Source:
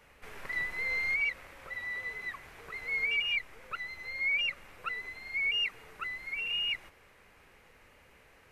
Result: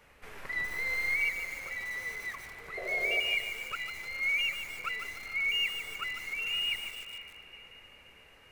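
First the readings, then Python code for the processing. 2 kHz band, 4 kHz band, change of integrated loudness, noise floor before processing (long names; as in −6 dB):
+0.5 dB, +1.0 dB, +0.5 dB, −61 dBFS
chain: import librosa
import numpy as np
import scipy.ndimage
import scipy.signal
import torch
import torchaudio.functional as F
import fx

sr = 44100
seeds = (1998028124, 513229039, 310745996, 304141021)

y = fx.echo_diffused(x, sr, ms=494, feedback_pct=48, wet_db=-12.5)
y = fx.spec_paint(y, sr, seeds[0], shape='noise', start_s=2.77, length_s=0.43, low_hz=350.0, high_hz=740.0, level_db=-40.0)
y = fx.echo_crushed(y, sr, ms=148, feedback_pct=55, bits=7, wet_db=-7)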